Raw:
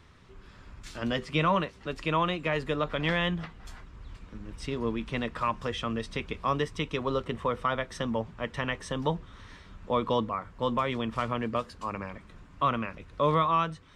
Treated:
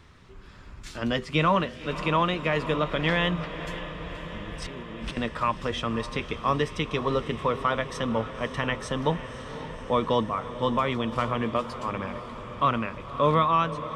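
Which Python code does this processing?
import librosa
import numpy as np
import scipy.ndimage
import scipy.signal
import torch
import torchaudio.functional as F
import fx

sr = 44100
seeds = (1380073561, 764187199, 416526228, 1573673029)

y = fx.over_compress(x, sr, threshold_db=-42.0, ratio=-1.0, at=(4.62, 5.17))
y = fx.echo_diffused(y, sr, ms=543, feedback_pct=71, wet_db=-12.5)
y = y * librosa.db_to_amplitude(3.0)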